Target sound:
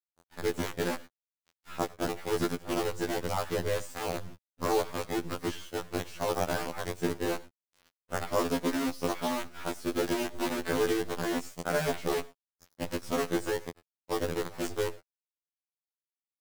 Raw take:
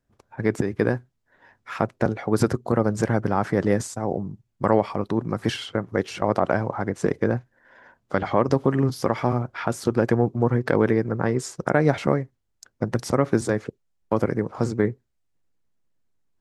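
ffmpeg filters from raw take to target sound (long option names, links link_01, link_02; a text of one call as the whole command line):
ffmpeg -i in.wav -af "aecho=1:1:97:0.158,acrusher=bits=4:dc=4:mix=0:aa=0.000001,afftfilt=real='re*2*eq(mod(b,4),0)':imag='im*2*eq(mod(b,4),0)':win_size=2048:overlap=0.75,volume=-6dB" out.wav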